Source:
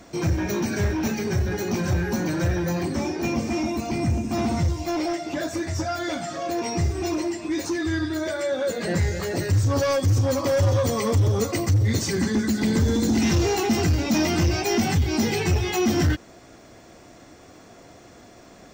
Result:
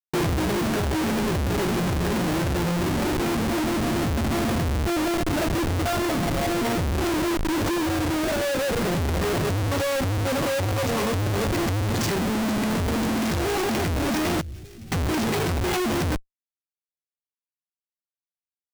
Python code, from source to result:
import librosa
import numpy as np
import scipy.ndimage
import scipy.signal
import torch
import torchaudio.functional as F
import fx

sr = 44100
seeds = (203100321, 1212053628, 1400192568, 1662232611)

y = fx.schmitt(x, sr, flips_db=-28.0)
y = fx.tone_stack(y, sr, knobs='10-0-1', at=(14.41, 14.92))
y = fx.rider(y, sr, range_db=10, speed_s=0.5)